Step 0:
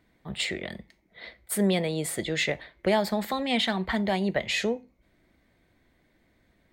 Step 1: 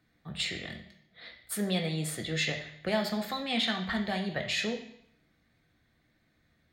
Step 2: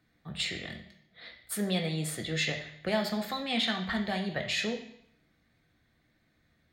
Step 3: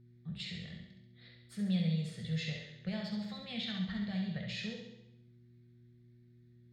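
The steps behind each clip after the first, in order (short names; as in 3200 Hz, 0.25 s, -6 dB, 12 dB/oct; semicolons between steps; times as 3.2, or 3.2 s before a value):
passive tone stack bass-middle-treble 5-5-5; reverb RT60 0.70 s, pre-delay 3 ms, DRR 3.5 dB
nothing audible
EQ curve 100 Hz 0 dB, 180 Hz +8 dB, 320 Hz -22 dB, 470 Hz -7 dB, 670 Hz -13 dB, 960 Hz -15 dB, 1800 Hz -9 dB, 5000 Hz -5 dB, 14000 Hz -28 dB; flutter echo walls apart 11.6 m, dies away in 0.73 s; buzz 120 Hz, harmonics 3, -56 dBFS -7 dB/oct; gain -5 dB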